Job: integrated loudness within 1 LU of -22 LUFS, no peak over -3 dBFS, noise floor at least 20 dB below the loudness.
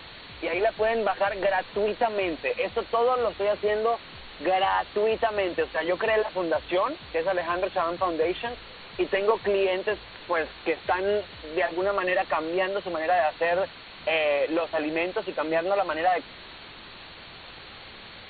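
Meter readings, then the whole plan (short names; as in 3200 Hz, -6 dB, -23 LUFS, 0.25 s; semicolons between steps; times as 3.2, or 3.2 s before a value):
noise floor -45 dBFS; noise floor target -47 dBFS; loudness -26.5 LUFS; peak -10.0 dBFS; loudness target -22.0 LUFS
-> noise print and reduce 6 dB; gain +4.5 dB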